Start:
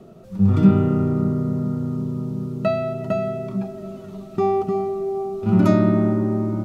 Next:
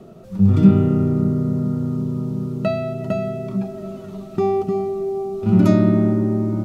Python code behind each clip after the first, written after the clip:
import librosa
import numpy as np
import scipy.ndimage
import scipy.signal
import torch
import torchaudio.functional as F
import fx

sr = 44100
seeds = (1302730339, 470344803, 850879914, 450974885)

y = fx.dynamic_eq(x, sr, hz=1100.0, q=0.76, threshold_db=-35.0, ratio=4.0, max_db=-6)
y = y * 10.0 ** (2.5 / 20.0)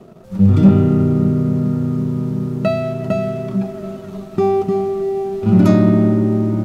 y = fx.leveller(x, sr, passes=1)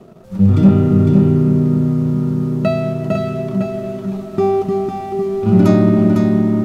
y = x + 10.0 ** (-5.0 / 20.0) * np.pad(x, (int(504 * sr / 1000.0), 0))[:len(x)]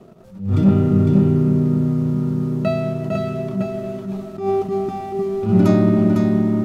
y = fx.attack_slew(x, sr, db_per_s=120.0)
y = y * 10.0 ** (-3.0 / 20.0)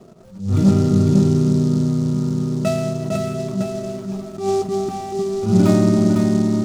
y = fx.noise_mod_delay(x, sr, seeds[0], noise_hz=5200.0, depth_ms=0.031)